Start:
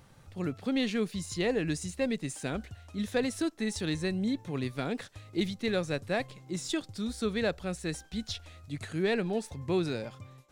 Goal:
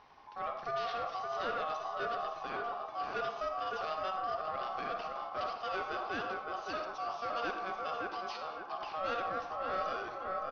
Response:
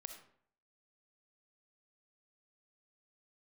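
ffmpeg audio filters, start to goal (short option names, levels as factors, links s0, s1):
-filter_complex "[0:a]asplit=2[s0][s1];[s1]adelay=564,lowpass=f=960:p=1,volume=0.562,asplit=2[s2][s3];[s3]adelay=564,lowpass=f=960:p=1,volume=0.43,asplit=2[s4][s5];[s5]adelay=564,lowpass=f=960:p=1,volume=0.43,asplit=2[s6][s7];[s7]adelay=564,lowpass=f=960:p=1,volume=0.43,asplit=2[s8][s9];[s9]adelay=564,lowpass=f=960:p=1,volume=0.43[s10];[s0][s2][s4][s6][s8][s10]amix=inputs=6:normalize=0,asplit=2[s11][s12];[s12]alimiter=level_in=1.5:limit=0.0631:level=0:latency=1,volume=0.668,volume=0.944[s13];[s11][s13]amix=inputs=2:normalize=0,acrossover=split=3700[s14][s15];[s15]acompressor=threshold=0.00631:ratio=4:attack=1:release=60[s16];[s14][s16]amix=inputs=2:normalize=0,aresample=11025,asoftclip=type=tanh:threshold=0.0708,aresample=44100,aeval=exprs='val(0)*sin(2*PI*940*n/s)':c=same[s17];[1:a]atrim=start_sample=2205[s18];[s17][s18]afir=irnorm=-1:irlink=0"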